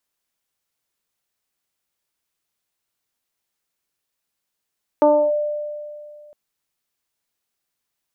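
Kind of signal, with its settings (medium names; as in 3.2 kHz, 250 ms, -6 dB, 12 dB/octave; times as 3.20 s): FM tone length 1.31 s, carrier 595 Hz, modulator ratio 0.5, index 1, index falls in 0.30 s linear, decay 2.29 s, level -9 dB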